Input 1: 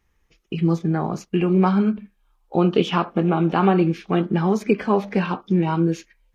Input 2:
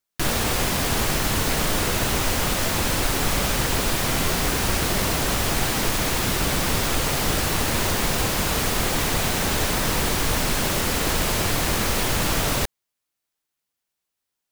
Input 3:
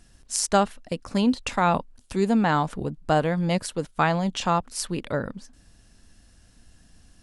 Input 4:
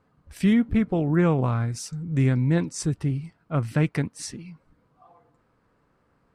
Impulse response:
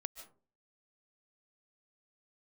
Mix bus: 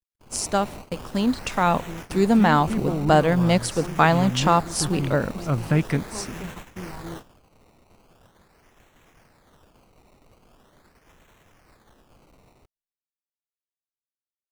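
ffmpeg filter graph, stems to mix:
-filter_complex "[0:a]adelay=1250,volume=-18.5dB[a];[1:a]acrusher=samples=18:mix=1:aa=0.000001:lfo=1:lforange=18:lforate=0.42,asoftclip=type=hard:threshold=-22dB,volume=-14dB,asplit=2[b][c];[c]volume=-21.5dB[d];[2:a]dynaudnorm=f=350:g=9:m=11.5dB,acrusher=bits=7:mix=0:aa=0.000001,volume=-3.5dB,asplit=3[e][f][g];[f]volume=-16.5dB[h];[3:a]adelay=1950,volume=1.5dB[i];[g]apad=whole_len=365665[j];[i][j]sidechaincompress=threshold=-24dB:ratio=8:attack=16:release=583[k];[4:a]atrim=start_sample=2205[l];[d][h]amix=inputs=2:normalize=0[m];[m][l]afir=irnorm=-1:irlink=0[n];[a][b][e][k][n]amix=inputs=5:normalize=0,agate=range=-36dB:threshold=-36dB:ratio=16:detection=peak"

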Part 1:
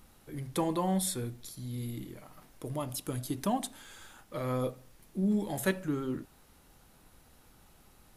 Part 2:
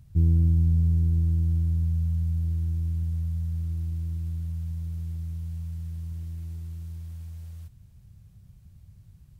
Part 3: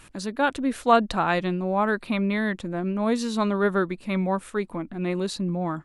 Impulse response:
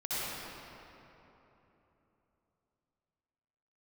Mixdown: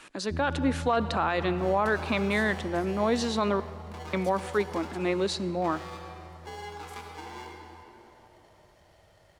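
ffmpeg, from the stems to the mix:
-filter_complex "[0:a]acompressor=threshold=-36dB:ratio=6,aeval=exprs='val(0)*sgn(sin(2*PI*620*n/s))':c=same,adelay=1300,volume=-6.5dB,asplit=2[a][b];[b]volume=-5.5dB[c];[1:a]lowshelf=f=130:g=11,adelay=150,volume=-4.5dB[d];[2:a]acontrast=31,volume=-3dB,asplit=3[e][f][g];[e]atrim=end=3.6,asetpts=PTS-STARTPTS,afade=t=out:st=3.596:d=0.004:c=hsin[h];[f]atrim=start=3.6:end=4.13,asetpts=PTS-STARTPTS,volume=0[i];[g]atrim=start=4.13,asetpts=PTS-STARTPTS,afade=t=in:d=0.004:c=hsin[j];[h][i][j]concat=n=3:v=0:a=1,asplit=2[k][l];[l]volume=-24dB[m];[3:a]atrim=start_sample=2205[n];[c][m]amix=inputs=2:normalize=0[o];[o][n]afir=irnorm=-1:irlink=0[p];[a][d][k][p]amix=inputs=4:normalize=0,acrossover=split=240 7800:gain=0.112 1 0.2[q][r][s];[q][r][s]amix=inputs=3:normalize=0,alimiter=limit=-15.5dB:level=0:latency=1:release=28"

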